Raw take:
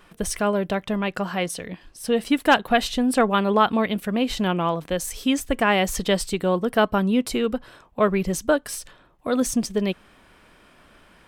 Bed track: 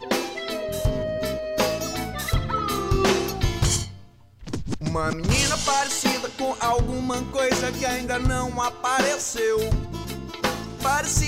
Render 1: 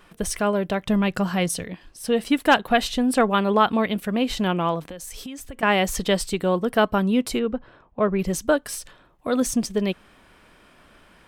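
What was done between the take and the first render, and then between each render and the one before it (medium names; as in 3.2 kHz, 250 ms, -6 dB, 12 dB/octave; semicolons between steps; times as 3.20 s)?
0.86–1.64 s: tone controls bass +8 dB, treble +5 dB; 4.89–5.63 s: compression 12:1, threshold -32 dBFS; 7.39–8.19 s: tape spacing loss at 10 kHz 30 dB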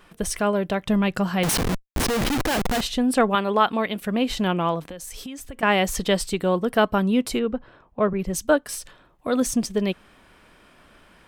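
1.43–2.81 s: Schmitt trigger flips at -34.5 dBFS; 3.35–4.01 s: bass shelf 210 Hz -9.5 dB; 8.13–8.69 s: three bands expanded up and down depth 70%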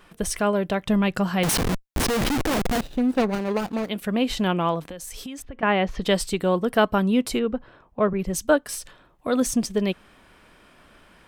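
2.32–3.89 s: median filter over 41 samples; 5.42–6.02 s: distance through air 290 m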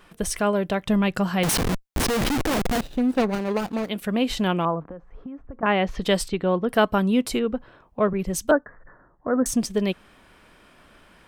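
4.65–5.66 s: Chebyshev low-pass 1.3 kHz, order 3; 6.28–6.69 s: distance through air 220 m; 8.51–9.46 s: steep low-pass 1.9 kHz 96 dB/octave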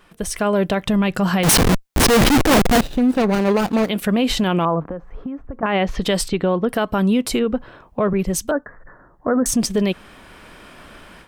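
level rider gain up to 11 dB; peak limiter -10.5 dBFS, peak gain reduction 9 dB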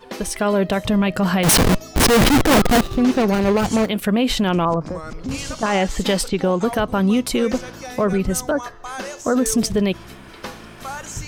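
add bed track -9 dB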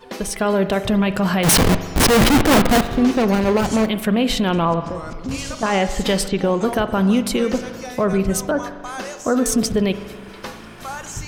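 spring tank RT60 1.6 s, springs 41 ms, chirp 55 ms, DRR 11 dB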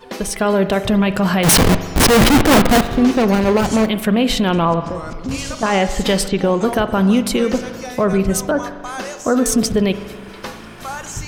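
trim +2.5 dB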